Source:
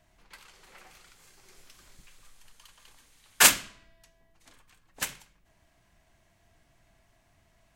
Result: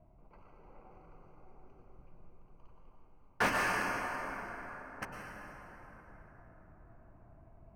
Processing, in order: Wiener smoothing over 25 samples; reverse; upward compressor, threshold -49 dBFS; reverse; running mean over 12 samples; plate-style reverb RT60 4.8 s, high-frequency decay 0.45×, pre-delay 90 ms, DRR -0.5 dB; slew limiter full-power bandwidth 96 Hz; gain -2 dB

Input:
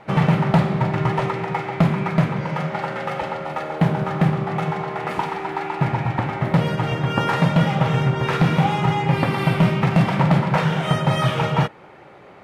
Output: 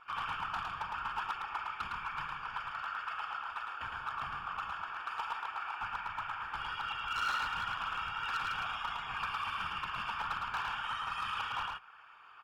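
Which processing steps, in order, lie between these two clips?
octaver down 2 oct, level 0 dB; inverse Chebyshev high-pass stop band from 670 Hz, stop band 40 dB; comb 4.3 ms, depth 52%; in parallel at +1 dB: compressor, threshold -39 dBFS, peak gain reduction 17 dB; on the sum: whisperiser; running mean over 22 samples; hard clip -31 dBFS, distortion -15 dB; echo 0.109 s -3.5 dB

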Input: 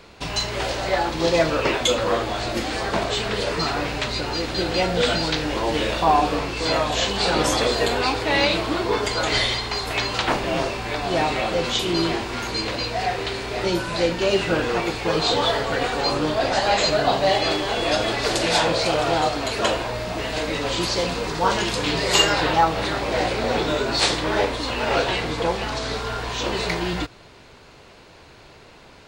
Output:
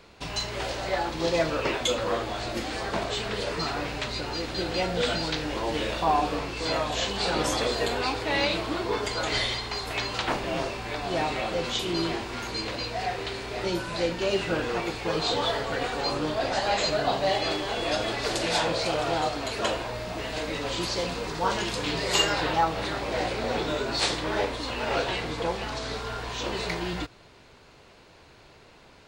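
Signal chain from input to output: 19.85–22.57 added noise pink -58 dBFS; gain -6 dB

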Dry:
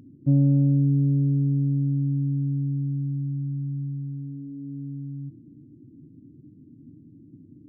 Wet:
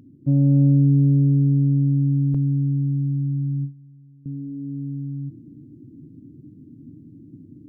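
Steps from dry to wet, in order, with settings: 2.34–4.26 gate with hold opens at -23 dBFS; AGC gain up to 5 dB

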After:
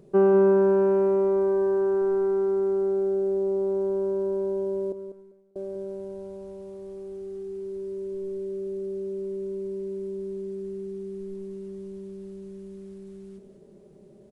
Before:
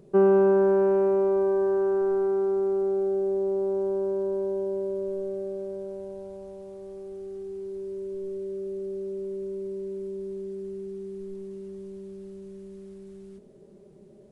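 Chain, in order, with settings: 4.92–5.56 gate -27 dBFS, range -32 dB; feedback echo 0.196 s, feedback 20%, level -10 dB

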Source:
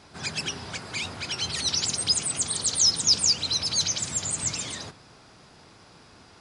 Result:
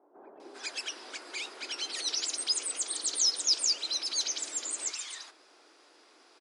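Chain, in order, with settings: elliptic high-pass 310 Hz, stop band 70 dB; bands offset in time lows, highs 0.4 s, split 900 Hz; gain -5 dB

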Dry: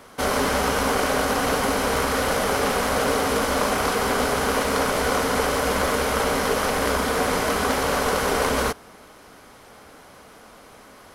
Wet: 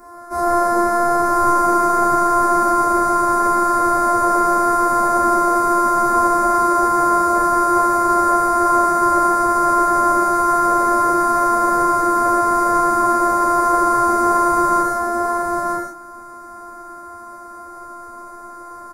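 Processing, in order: tone controls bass +1 dB, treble -7 dB; in parallel at -1 dB: compressor 6:1, threshold -36 dBFS, peak gain reduction 17 dB; on the sum: robotiser 346 Hz; non-linear reverb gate 0.12 s flat, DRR -4 dB; time stretch by phase-locked vocoder 1.7×; Butterworth band-stop 3100 Hz, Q 0.66; on a send: echo 0.938 s -3.5 dB

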